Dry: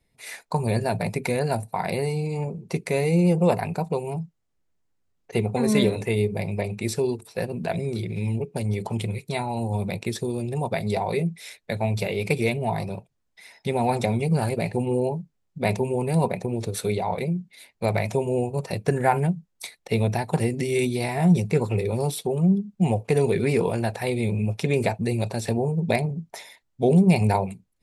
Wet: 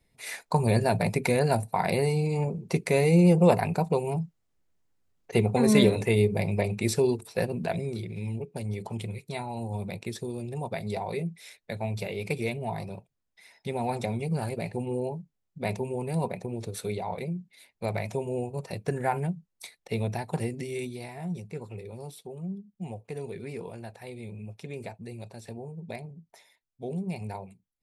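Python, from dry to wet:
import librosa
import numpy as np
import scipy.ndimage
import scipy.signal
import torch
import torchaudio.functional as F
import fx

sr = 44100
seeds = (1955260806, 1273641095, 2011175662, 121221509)

y = fx.gain(x, sr, db=fx.line((7.4, 0.5), (8.11, -7.0), (20.43, -7.0), (21.27, -16.0)))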